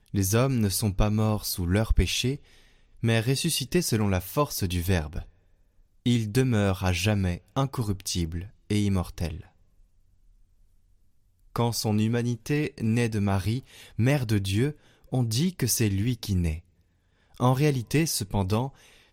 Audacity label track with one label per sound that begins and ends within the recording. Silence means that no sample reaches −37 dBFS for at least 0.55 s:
3.030000	5.220000	sound
6.060000	9.410000	sound
11.560000	16.590000	sound